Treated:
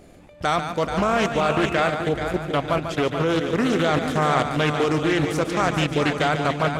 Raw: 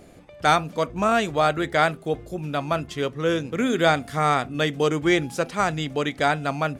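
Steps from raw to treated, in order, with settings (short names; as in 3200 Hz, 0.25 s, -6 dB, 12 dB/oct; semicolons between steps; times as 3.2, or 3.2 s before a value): low shelf 64 Hz +4 dB; level quantiser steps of 14 dB; on a send: multi-head echo 0.144 s, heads first and third, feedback 49%, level -8.5 dB; 1.39–1.88 on the sum: whine 2600 Hz -42 dBFS; Doppler distortion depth 0.27 ms; gain +7.5 dB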